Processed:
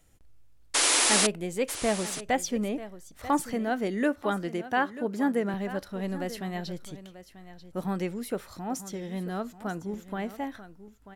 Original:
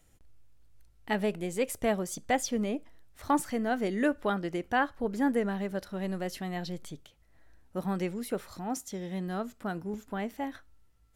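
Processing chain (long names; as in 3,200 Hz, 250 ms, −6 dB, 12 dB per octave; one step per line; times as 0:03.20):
0:00.74–0:01.27: sound drawn into the spectrogram noise 250–11,000 Hz −24 dBFS
0:03.53–0:05.54: high-pass filter 110 Hz 24 dB per octave
on a send: single-tap delay 939 ms −14.5 dB
on the sum: level +1 dB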